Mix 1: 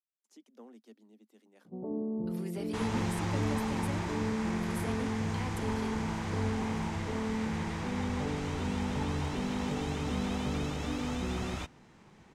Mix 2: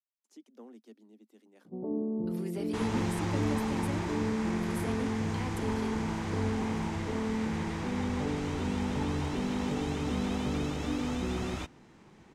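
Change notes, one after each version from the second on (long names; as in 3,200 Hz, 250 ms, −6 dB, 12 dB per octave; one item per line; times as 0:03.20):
master: add parametric band 320 Hz +4.5 dB 0.76 octaves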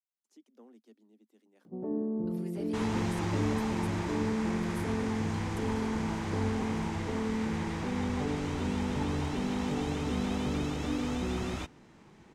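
speech −5.5 dB
first sound: remove low-pass filter 1,100 Hz 24 dB per octave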